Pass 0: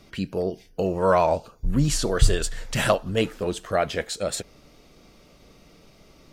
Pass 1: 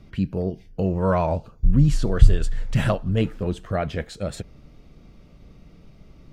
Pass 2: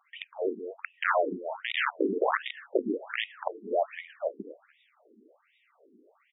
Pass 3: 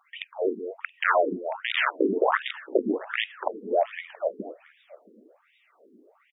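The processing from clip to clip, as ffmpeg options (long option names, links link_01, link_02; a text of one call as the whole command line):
ffmpeg -i in.wav -filter_complex "[0:a]bass=frequency=250:gain=13,treble=frequency=4000:gain=-8,asplit=2[link_01][link_02];[link_02]alimiter=limit=-5.5dB:level=0:latency=1:release=332,volume=-2dB[link_03];[link_01][link_03]amix=inputs=2:normalize=0,volume=-9dB" out.wav
ffmpeg -i in.wav -af "aecho=1:1:238|476|714:0.355|0.106|0.0319,aeval=exprs='(mod(4.22*val(0)+1,2)-1)/4.22':channel_layout=same,afftfilt=real='re*between(b*sr/1024,300*pow(2700/300,0.5+0.5*sin(2*PI*1.3*pts/sr))/1.41,300*pow(2700/300,0.5+0.5*sin(2*PI*1.3*pts/sr))*1.41)':imag='im*between(b*sr/1024,300*pow(2700/300,0.5+0.5*sin(2*PI*1.3*pts/sr))/1.41,300*pow(2700/300,0.5+0.5*sin(2*PI*1.3*pts/sr))*1.41)':win_size=1024:overlap=0.75,volume=1dB" out.wav
ffmpeg -i in.wav -af "aecho=1:1:675:0.0891,volume=4dB" out.wav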